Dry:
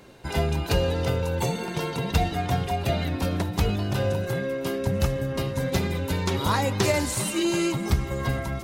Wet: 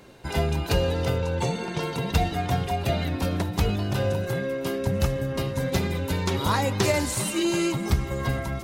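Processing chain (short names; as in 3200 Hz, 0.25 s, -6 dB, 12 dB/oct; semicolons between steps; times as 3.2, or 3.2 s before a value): 1.18–1.83 LPF 7600 Hz 12 dB/oct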